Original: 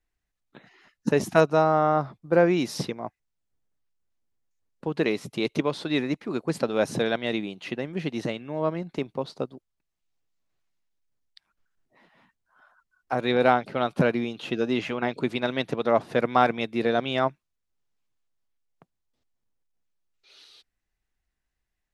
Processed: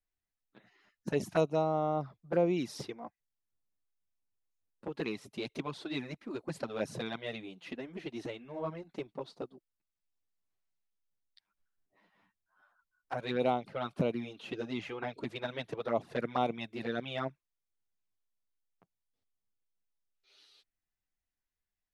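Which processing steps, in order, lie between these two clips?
touch-sensitive flanger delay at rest 10.5 ms, full sweep at -17 dBFS; trim -7.5 dB

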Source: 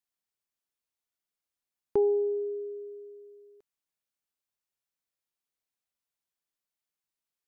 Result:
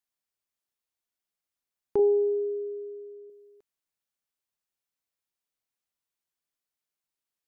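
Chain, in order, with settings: 1.99–3.30 s: tilt EQ -2.5 dB/octave

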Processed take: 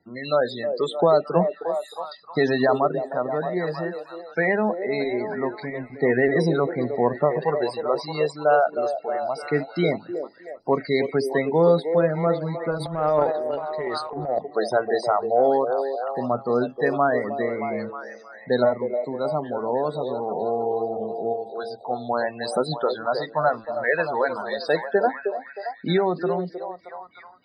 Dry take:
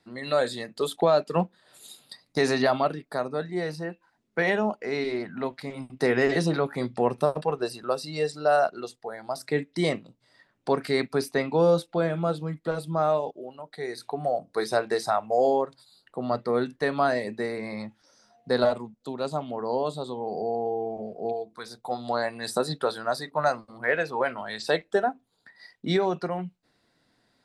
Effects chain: loudest bins only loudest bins 32; repeats whose band climbs or falls 312 ms, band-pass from 470 Hz, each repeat 0.7 oct, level -5 dB; 12.77–14.39 s: transient shaper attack -12 dB, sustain +11 dB; trim +3 dB

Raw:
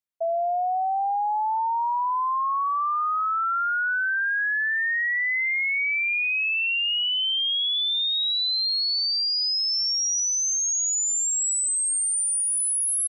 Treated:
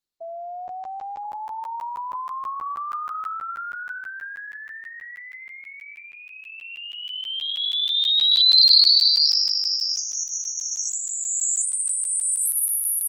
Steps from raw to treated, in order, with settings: FFT filter 190 Hz 0 dB, 350 Hz +10 dB, 580 Hz -10 dB, 1.2 kHz -3 dB, 1.7 kHz -11 dB, 2.5 kHz -17 dB, 4.2 kHz +13 dB, 6 kHz -4 dB, 8.6 kHz +2 dB, 12 kHz +3 dB; crackling interface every 0.16 s, samples 512, zero, from 0.68 s; trim -1 dB; Opus 16 kbps 48 kHz

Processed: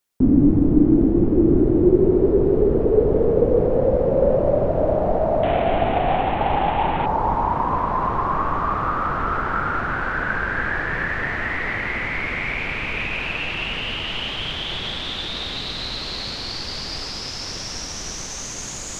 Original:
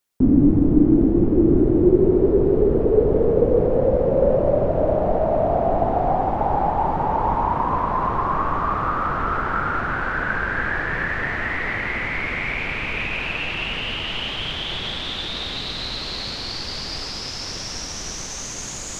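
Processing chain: 5.43–7.06 s: one-bit delta coder 16 kbps, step -20.5 dBFS

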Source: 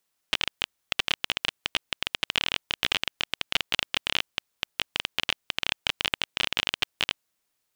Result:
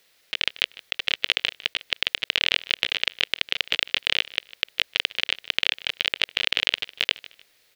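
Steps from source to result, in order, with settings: graphic EQ 250/500/1000/2000/4000/8000 Hz -3/+8/-5/+8/+7/-3 dB; compressor with a negative ratio -29 dBFS, ratio -1; feedback delay 152 ms, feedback 30%, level -19.5 dB; trim +5 dB

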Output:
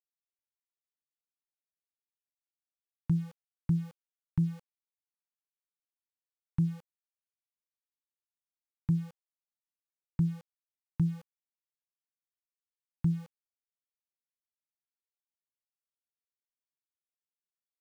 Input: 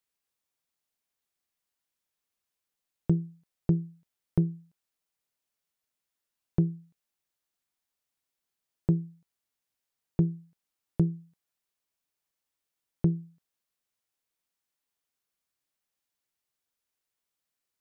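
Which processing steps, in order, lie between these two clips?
Chebyshev band-stop 300–880 Hz, order 4; peak limiter -19.5 dBFS, peak gain reduction 4.5 dB; low-pass that closes with the level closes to 610 Hz; small samples zeroed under -47.5 dBFS

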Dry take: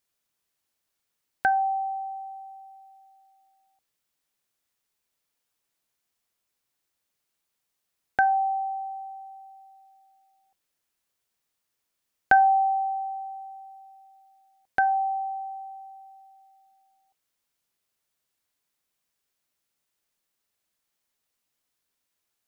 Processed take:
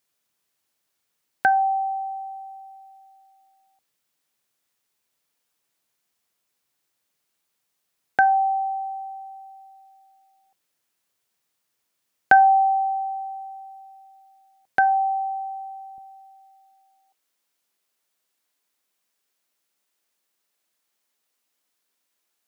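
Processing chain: high-pass 97 Hz 12 dB/octave, from 15.98 s 220 Hz; trim +4 dB

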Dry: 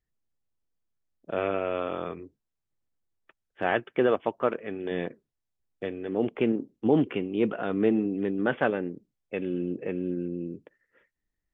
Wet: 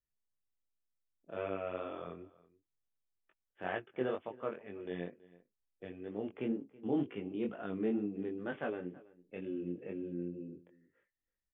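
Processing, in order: harmonic-percussive split percussive -5 dB; chorus 2.1 Hz, delay 19 ms, depth 4.2 ms; echo from a far wall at 56 m, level -21 dB; trim -6.5 dB

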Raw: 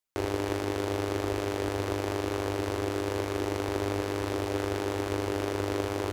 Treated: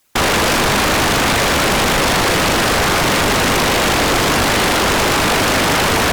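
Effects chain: whisper effect; sine folder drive 20 dB, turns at -15 dBFS; trim +3.5 dB

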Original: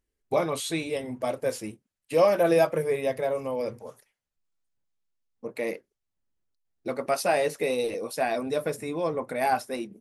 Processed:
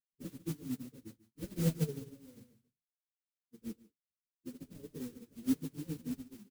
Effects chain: CVSD coder 16 kbps; inverse Chebyshev low-pass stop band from 690 Hz, stop band 50 dB; tilt EQ +2 dB/octave; modulation noise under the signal 13 dB; plain phase-vocoder stretch 0.65×; flange 0.59 Hz, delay 7.5 ms, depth 6.1 ms, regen -36%; on a send: delay 145 ms -7.5 dB; on the sum: upward expansion 2.5:1, over -58 dBFS; trim +18 dB

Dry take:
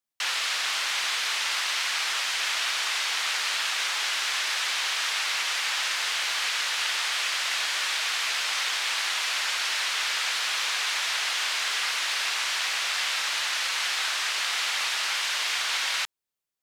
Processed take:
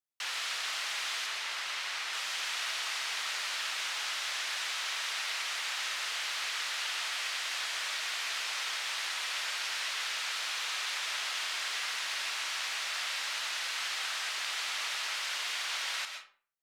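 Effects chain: 1.26–2.13 s: treble shelf 4.9 kHz -5.5 dB; on a send: reverberation RT60 0.45 s, pre-delay 86 ms, DRR 5.5 dB; on the sum: trim -8.5 dB

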